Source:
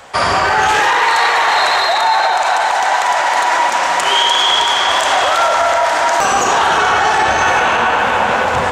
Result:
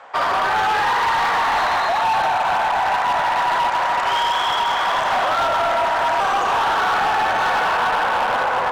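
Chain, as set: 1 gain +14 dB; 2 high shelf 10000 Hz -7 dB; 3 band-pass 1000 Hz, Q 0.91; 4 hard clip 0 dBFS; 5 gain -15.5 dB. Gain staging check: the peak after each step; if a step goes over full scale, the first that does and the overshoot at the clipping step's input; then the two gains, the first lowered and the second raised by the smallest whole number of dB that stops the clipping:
+12.0, +12.0, +9.5, 0.0, -15.5 dBFS; step 1, 9.5 dB; step 1 +4 dB, step 5 -5.5 dB

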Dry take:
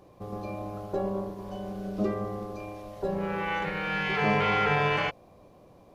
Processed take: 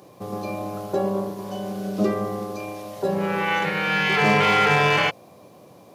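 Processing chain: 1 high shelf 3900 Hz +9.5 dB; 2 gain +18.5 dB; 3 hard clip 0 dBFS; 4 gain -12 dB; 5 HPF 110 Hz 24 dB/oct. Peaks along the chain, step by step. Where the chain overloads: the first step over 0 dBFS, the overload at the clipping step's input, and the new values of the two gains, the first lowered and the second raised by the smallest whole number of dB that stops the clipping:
-13.0, +5.5, 0.0, -12.0, -7.0 dBFS; step 2, 5.5 dB; step 2 +12.5 dB, step 4 -6 dB

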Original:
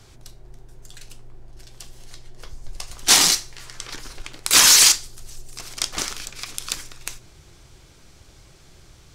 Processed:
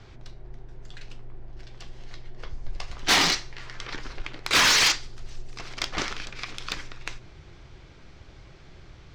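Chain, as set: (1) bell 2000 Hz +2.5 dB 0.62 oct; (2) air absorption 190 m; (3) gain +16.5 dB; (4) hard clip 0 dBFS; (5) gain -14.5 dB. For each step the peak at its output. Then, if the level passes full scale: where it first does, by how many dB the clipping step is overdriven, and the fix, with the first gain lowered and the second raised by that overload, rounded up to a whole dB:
-4.5, -8.0, +8.5, 0.0, -14.5 dBFS; step 3, 8.5 dB; step 3 +7.5 dB, step 5 -5.5 dB

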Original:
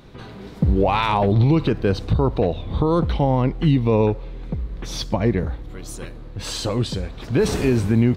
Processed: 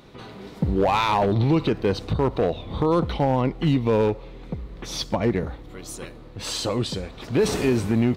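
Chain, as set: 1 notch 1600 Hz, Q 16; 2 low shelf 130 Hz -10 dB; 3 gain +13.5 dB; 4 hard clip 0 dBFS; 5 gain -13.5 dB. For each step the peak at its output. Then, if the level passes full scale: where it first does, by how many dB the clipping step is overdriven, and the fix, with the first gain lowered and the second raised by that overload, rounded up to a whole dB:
-8.5, -7.5, +6.0, 0.0, -13.5 dBFS; step 3, 6.0 dB; step 3 +7.5 dB, step 5 -7.5 dB

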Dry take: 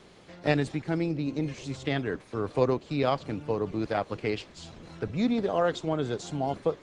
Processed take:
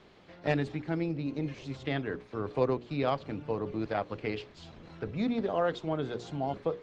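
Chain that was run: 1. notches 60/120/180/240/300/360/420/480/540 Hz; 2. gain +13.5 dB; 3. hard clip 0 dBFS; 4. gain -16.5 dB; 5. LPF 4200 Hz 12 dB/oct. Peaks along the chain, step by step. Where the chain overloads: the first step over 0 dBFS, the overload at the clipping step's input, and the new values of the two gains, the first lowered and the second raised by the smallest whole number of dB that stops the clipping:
-9.0, +4.5, 0.0, -16.5, -16.0 dBFS; step 2, 4.5 dB; step 2 +8.5 dB, step 4 -11.5 dB

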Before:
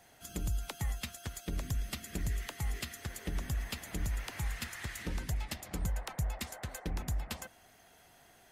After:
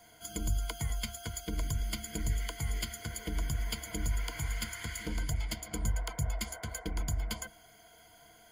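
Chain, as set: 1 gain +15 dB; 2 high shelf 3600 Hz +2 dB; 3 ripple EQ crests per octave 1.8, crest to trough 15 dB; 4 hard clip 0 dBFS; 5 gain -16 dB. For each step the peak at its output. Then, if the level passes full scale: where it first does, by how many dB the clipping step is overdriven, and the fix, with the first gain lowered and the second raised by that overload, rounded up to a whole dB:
-8.5, -7.5, -3.5, -3.5, -19.5 dBFS; no overload

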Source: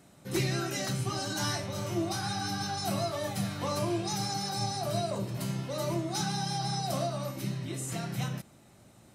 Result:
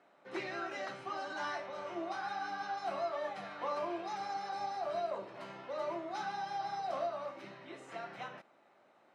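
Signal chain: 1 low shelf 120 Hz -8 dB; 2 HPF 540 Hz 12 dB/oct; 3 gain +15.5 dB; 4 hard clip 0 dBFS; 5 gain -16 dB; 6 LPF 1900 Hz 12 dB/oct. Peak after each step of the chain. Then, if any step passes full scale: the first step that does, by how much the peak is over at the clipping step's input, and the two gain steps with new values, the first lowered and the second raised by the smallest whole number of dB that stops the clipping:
-19.5, -20.0, -4.5, -4.5, -20.5, -26.0 dBFS; no overload

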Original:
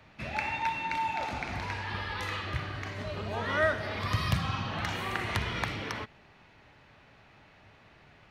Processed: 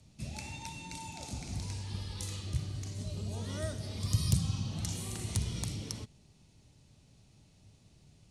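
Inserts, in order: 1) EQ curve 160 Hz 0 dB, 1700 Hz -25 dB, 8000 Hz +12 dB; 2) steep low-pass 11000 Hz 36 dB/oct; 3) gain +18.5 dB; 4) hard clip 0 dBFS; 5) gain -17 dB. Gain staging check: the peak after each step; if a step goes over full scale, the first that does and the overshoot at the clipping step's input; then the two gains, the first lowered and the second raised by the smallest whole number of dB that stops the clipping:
-12.0, -14.0, +4.5, 0.0, -17.0 dBFS; step 3, 4.5 dB; step 3 +13.5 dB, step 5 -12 dB

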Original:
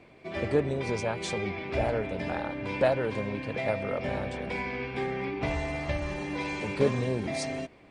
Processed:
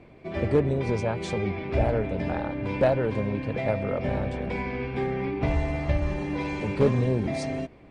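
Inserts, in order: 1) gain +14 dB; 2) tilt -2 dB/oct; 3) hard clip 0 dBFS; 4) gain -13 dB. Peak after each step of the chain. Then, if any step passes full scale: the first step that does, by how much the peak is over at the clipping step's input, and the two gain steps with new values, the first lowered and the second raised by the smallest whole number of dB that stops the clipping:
+2.0, +5.5, 0.0, -13.0 dBFS; step 1, 5.5 dB; step 1 +8 dB, step 4 -7 dB

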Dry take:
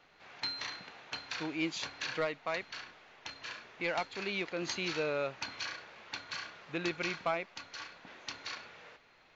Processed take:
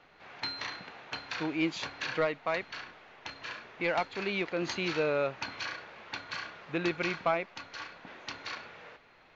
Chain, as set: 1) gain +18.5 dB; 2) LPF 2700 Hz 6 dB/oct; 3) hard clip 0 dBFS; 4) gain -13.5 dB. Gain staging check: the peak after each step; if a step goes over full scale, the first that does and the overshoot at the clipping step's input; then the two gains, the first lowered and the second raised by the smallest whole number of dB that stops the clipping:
-4.0, -5.5, -5.5, -19.0 dBFS; no overload

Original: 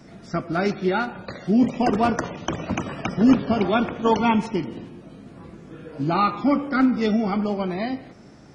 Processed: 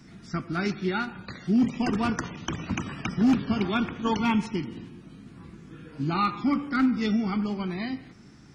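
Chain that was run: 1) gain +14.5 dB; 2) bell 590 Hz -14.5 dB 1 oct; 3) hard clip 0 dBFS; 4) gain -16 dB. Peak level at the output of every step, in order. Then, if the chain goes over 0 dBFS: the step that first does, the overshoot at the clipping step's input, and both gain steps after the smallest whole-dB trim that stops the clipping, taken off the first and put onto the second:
+9.5, +7.0, 0.0, -16.0 dBFS; step 1, 7.0 dB; step 1 +7.5 dB, step 4 -9 dB

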